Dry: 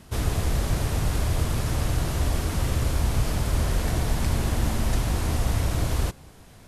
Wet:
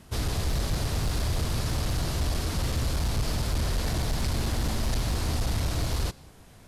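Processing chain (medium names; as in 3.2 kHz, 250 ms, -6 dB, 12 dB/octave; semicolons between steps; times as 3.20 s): overload inside the chain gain 19.5 dB; dynamic bell 4.5 kHz, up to +7 dB, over -55 dBFS, Q 1.7; trim -2.5 dB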